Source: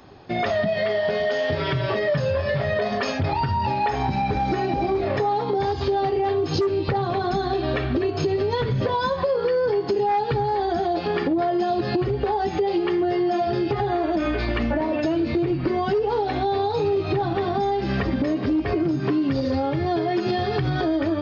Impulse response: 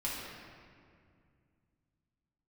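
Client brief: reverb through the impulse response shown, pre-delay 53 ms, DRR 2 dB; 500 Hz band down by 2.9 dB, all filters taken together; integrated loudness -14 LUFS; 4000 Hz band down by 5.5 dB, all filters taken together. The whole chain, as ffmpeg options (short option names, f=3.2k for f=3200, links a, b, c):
-filter_complex "[0:a]equalizer=f=500:t=o:g=-4,equalizer=f=4k:t=o:g=-7,asplit=2[a][b];[1:a]atrim=start_sample=2205,adelay=53[c];[b][c]afir=irnorm=-1:irlink=0,volume=-6dB[d];[a][d]amix=inputs=2:normalize=0,volume=8.5dB"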